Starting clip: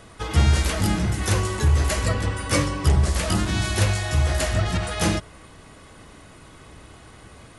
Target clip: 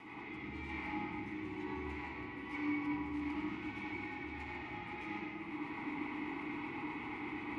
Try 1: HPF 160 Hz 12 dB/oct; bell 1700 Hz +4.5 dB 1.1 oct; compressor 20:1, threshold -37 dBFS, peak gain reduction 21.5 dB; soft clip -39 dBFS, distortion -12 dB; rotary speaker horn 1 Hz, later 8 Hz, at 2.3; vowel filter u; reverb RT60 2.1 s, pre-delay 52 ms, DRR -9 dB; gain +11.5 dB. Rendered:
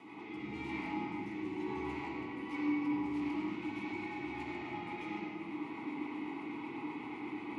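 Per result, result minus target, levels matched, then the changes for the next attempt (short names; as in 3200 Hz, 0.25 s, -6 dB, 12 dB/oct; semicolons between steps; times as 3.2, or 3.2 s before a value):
2000 Hz band -3.5 dB; 125 Hz band -2.5 dB
change: bell 1700 Hz +14 dB 1.1 oct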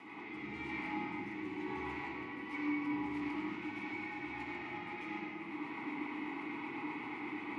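125 Hz band -4.0 dB
remove: HPF 160 Hz 12 dB/oct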